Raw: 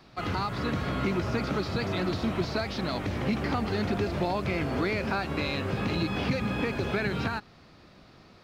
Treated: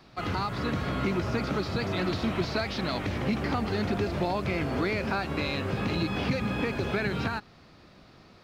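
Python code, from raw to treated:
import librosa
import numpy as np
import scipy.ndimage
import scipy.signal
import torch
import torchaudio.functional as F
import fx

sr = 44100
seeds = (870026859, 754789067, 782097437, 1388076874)

y = fx.peak_eq(x, sr, hz=2500.0, db=3.0, octaves=1.7, at=(1.98, 3.18))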